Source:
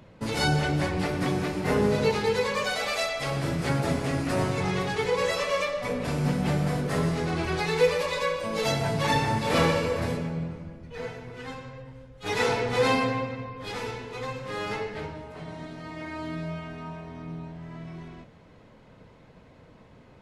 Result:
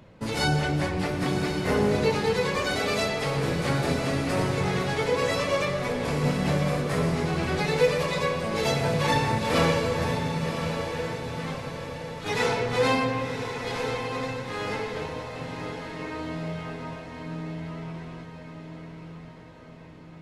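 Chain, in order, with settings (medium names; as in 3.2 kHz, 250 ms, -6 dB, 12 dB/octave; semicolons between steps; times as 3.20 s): on a send: echo that smears into a reverb 1078 ms, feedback 53%, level -7 dB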